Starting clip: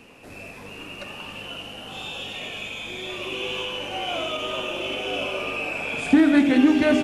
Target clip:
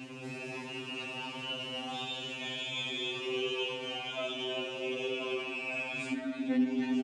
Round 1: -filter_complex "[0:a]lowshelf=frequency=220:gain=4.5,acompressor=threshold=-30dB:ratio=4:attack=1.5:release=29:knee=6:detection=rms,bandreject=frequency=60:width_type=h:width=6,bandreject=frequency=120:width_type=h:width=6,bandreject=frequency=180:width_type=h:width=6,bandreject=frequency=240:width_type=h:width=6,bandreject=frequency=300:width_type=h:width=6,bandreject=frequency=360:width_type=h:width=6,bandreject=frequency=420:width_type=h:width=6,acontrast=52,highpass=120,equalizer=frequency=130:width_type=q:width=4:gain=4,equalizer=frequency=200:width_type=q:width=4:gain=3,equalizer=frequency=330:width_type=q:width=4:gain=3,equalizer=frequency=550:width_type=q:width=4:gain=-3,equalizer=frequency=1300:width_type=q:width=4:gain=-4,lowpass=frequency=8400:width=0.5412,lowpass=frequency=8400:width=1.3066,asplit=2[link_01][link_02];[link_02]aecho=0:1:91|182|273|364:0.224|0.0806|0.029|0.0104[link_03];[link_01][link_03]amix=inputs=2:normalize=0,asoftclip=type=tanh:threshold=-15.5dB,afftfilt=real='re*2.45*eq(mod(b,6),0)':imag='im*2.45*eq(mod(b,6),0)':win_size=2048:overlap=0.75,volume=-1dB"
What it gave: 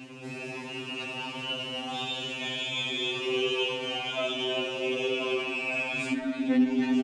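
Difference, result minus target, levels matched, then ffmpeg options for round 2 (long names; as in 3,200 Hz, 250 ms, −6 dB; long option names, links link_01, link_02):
downward compressor: peak gain reduction −6.5 dB
-filter_complex "[0:a]lowshelf=frequency=220:gain=4.5,acompressor=threshold=-38.5dB:ratio=4:attack=1.5:release=29:knee=6:detection=rms,bandreject=frequency=60:width_type=h:width=6,bandreject=frequency=120:width_type=h:width=6,bandreject=frequency=180:width_type=h:width=6,bandreject=frequency=240:width_type=h:width=6,bandreject=frequency=300:width_type=h:width=6,bandreject=frequency=360:width_type=h:width=6,bandreject=frequency=420:width_type=h:width=6,acontrast=52,highpass=120,equalizer=frequency=130:width_type=q:width=4:gain=4,equalizer=frequency=200:width_type=q:width=4:gain=3,equalizer=frequency=330:width_type=q:width=4:gain=3,equalizer=frequency=550:width_type=q:width=4:gain=-3,equalizer=frequency=1300:width_type=q:width=4:gain=-4,lowpass=frequency=8400:width=0.5412,lowpass=frequency=8400:width=1.3066,asplit=2[link_01][link_02];[link_02]aecho=0:1:91|182|273|364:0.224|0.0806|0.029|0.0104[link_03];[link_01][link_03]amix=inputs=2:normalize=0,asoftclip=type=tanh:threshold=-15.5dB,afftfilt=real='re*2.45*eq(mod(b,6),0)':imag='im*2.45*eq(mod(b,6),0)':win_size=2048:overlap=0.75,volume=-1dB"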